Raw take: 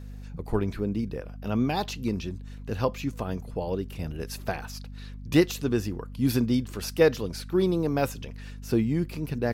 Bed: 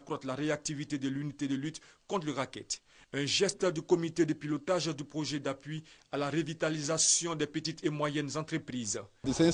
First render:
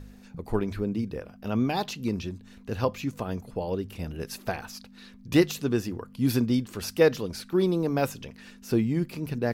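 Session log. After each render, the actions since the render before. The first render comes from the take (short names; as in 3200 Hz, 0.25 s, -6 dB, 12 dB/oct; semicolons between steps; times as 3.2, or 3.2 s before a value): de-hum 50 Hz, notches 3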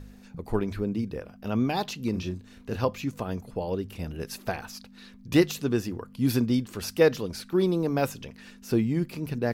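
2.11–2.76 doubler 33 ms -6 dB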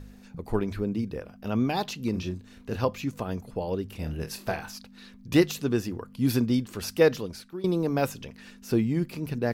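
3.99–4.76 flutter echo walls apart 4.4 m, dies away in 0.2 s; 7.13–7.64 fade out linear, to -19.5 dB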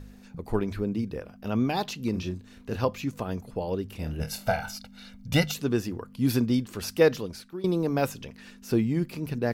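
4.2–5.54 comb 1.4 ms, depth 94%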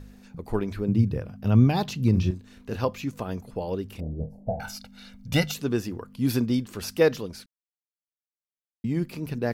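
0.88–2.31 bell 110 Hz +15 dB 1.5 oct; 4–4.6 inverse Chebyshev low-pass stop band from 1300 Hz; 7.46–8.84 mute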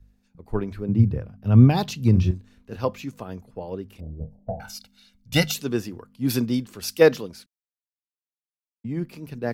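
three-band expander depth 70%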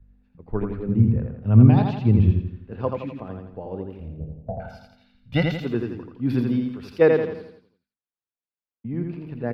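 air absorption 440 m; on a send: feedback echo 84 ms, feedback 46%, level -4 dB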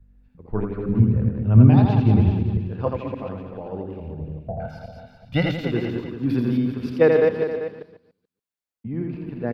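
reverse delay 0.143 s, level -4.5 dB; on a send: echo 0.391 s -11 dB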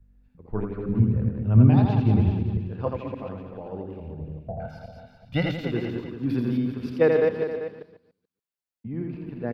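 gain -3.5 dB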